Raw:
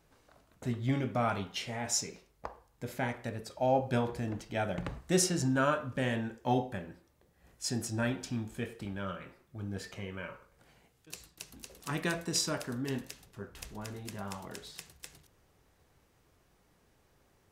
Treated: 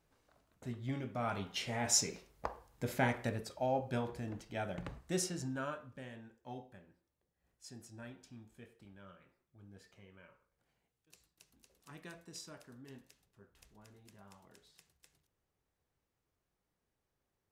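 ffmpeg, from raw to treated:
ffmpeg -i in.wav -af "volume=2dB,afade=type=in:start_time=1.16:duration=0.84:silence=0.298538,afade=type=out:start_time=3.23:duration=0.46:silence=0.375837,afade=type=out:start_time=4.87:duration=1.22:silence=0.266073" out.wav

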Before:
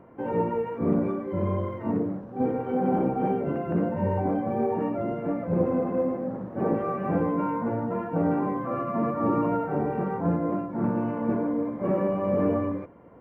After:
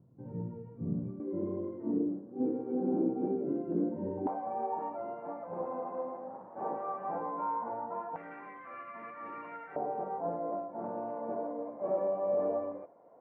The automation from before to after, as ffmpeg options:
ffmpeg -i in.wav -af "asetnsamples=nb_out_samples=441:pad=0,asendcmd='1.2 bandpass f 320;4.27 bandpass f 870;8.16 bandpass f 2100;9.76 bandpass f 680',bandpass=frequency=130:width_type=q:width=3.2:csg=0" out.wav

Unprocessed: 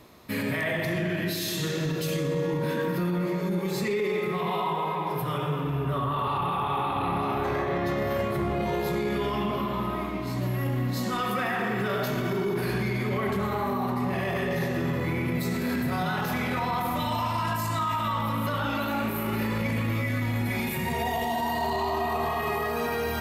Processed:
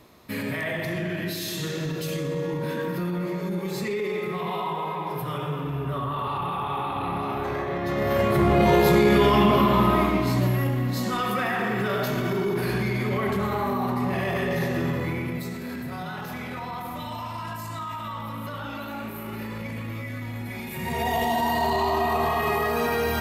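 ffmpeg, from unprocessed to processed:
ffmpeg -i in.wav -af "volume=20dB,afade=type=in:start_time=7.83:duration=0.87:silence=0.281838,afade=type=out:start_time=10.01:duration=0.75:silence=0.398107,afade=type=out:start_time=14.83:duration=0.74:silence=0.398107,afade=type=in:start_time=20.68:duration=0.5:silence=0.316228" out.wav

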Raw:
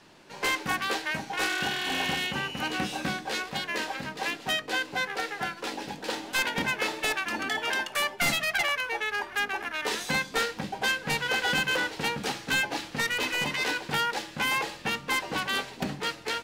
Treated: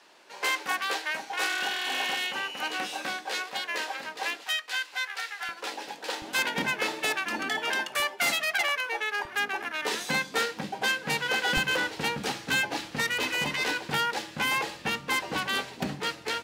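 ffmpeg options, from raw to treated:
ffmpeg -i in.wav -af "asetnsamples=nb_out_samples=441:pad=0,asendcmd='4.44 highpass f 1300;5.49 highpass f 470;6.22 highpass f 130;8 highpass f 330;9.25 highpass f 140;11.57 highpass f 53',highpass=470" out.wav

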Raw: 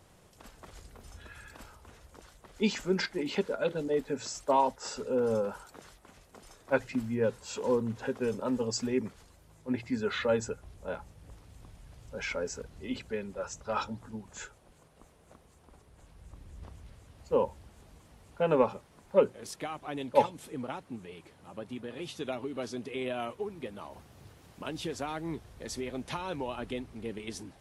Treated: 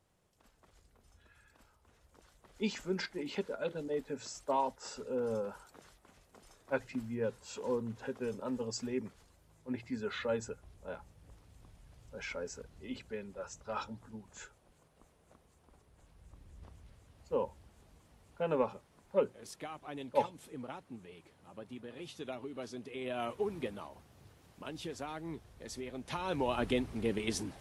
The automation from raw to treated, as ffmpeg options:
ffmpeg -i in.wav -af "volume=14dB,afade=type=in:start_time=1.79:duration=0.83:silence=0.375837,afade=type=in:start_time=23.01:duration=0.54:silence=0.334965,afade=type=out:start_time=23.55:duration=0.39:silence=0.354813,afade=type=in:start_time=26.03:duration=0.58:silence=0.281838" out.wav

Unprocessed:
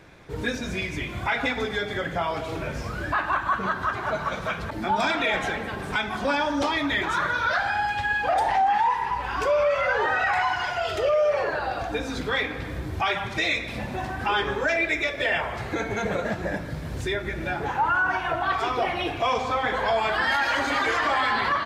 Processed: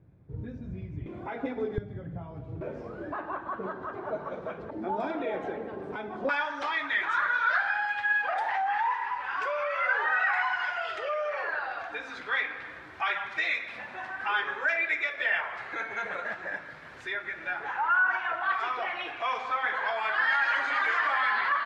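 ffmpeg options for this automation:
ffmpeg -i in.wav -af "asetnsamples=nb_out_samples=441:pad=0,asendcmd='1.06 bandpass f 350;1.78 bandpass f 120;2.61 bandpass f 410;6.29 bandpass f 1600',bandpass=frequency=110:width_type=q:width=1.5:csg=0" out.wav

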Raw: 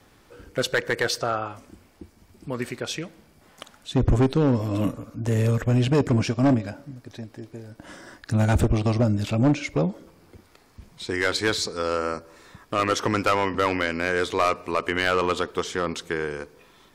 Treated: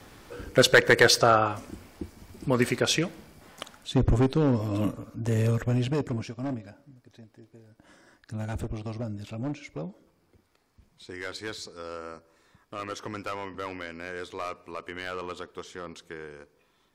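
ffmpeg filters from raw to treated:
ffmpeg -i in.wav -af "volume=6dB,afade=type=out:start_time=3.04:duration=1.04:silence=0.354813,afade=type=out:start_time=5.5:duration=0.79:silence=0.316228" out.wav

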